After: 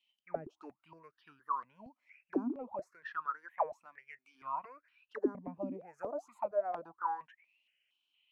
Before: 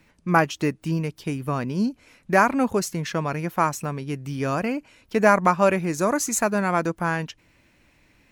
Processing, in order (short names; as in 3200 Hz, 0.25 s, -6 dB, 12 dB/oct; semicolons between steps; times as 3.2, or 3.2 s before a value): 2.95–4.35 low shelf 190 Hz -10 dB; auto-wah 260–3100 Hz, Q 19, down, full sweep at -14 dBFS; step phaser 4.3 Hz 420–2100 Hz; gain +4.5 dB